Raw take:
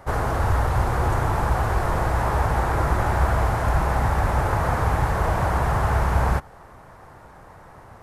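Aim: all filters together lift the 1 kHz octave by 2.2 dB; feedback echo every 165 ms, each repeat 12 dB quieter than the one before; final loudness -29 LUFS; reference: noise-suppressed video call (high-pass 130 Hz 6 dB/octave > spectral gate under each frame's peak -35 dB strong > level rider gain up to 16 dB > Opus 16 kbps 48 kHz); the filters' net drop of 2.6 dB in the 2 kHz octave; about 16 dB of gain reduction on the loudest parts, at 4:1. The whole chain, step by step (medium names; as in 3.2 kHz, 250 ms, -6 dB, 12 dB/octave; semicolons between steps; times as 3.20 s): peaking EQ 1 kHz +4 dB; peaking EQ 2 kHz -5.5 dB; compression 4:1, threshold -36 dBFS; high-pass 130 Hz 6 dB/octave; feedback delay 165 ms, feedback 25%, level -12 dB; spectral gate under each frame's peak -35 dB strong; level rider gain up to 16 dB; trim +10.5 dB; Opus 16 kbps 48 kHz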